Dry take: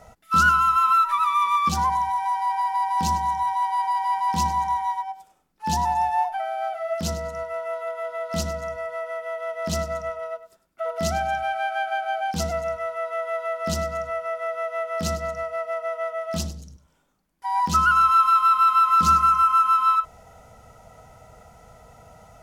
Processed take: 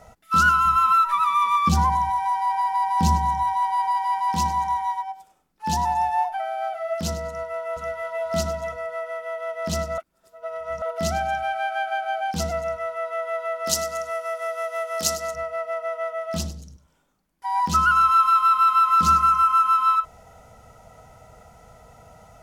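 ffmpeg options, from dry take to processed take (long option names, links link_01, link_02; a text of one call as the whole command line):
ffmpeg -i in.wav -filter_complex "[0:a]asettb=1/sr,asplit=3[link_01][link_02][link_03];[link_01]atrim=end=0.654[link_04];[link_02]atrim=start=0.65:end=3.98,asetpts=PTS-STARTPTS,afade=type=in:duration=0.004:curve=qsin,afade=type=out:start_time=3.326:duration=0.004:curve=qsin,lowshelf=frequency=310:gain=10[link_05];[link_03]atrim=start=3.976[link_06];[link_04][link_05]acrossfade=duration=0.004:curve1=hsin:curve2=qsin[link_07];[link_07][link_06]acrossfade=duration=0.004:curve1=qsin:curve2=hsin,asplit=2[link_08][link_09];[link_09]afade=type=in:start_time=7.27:duration=0.01,afade=type=out:start_time=8.23:duration=0.01,aecho=0:1:490|980|1470:0.891251|0.133688|0.0200531[link_10];[link_08][link_10]amix=inputs=2:normalize=0,asplit=3[link_11][link_12][link_13];[link_11]afade=type=out:start_time=13.66:duration=0.02[link_14];[link_12]bass=frequency=250:gain=-12,treble=frequency=4000:gain=12,afade=type=in:start_time=13.66:duration=0.02,afade=type=out:start_time=15.34:duration=0.02[link_15];[link_13]afade=type=in:start_time=15.34:duration=0.02[link_16];[link_14][link_15][link_16]amix=inputs=3:normalize=0,asplit=3[link_17][link_18][link_19];[link_17]atrim=end=9.982[link_20];[link_18]atrim=start=9.978:end=10.822,asetpts=PTS-STARTPTS,areverse[link_21];[link_19]atrim=start=10.818[link_22];[link_20][link_21]acrossfade=duration=0.004:curve1=hsin:curve2=hsin[link_23];[link_23][link_22]acrossfade=duration=0.004:curve1=hsin:curve2=hsin" out.wav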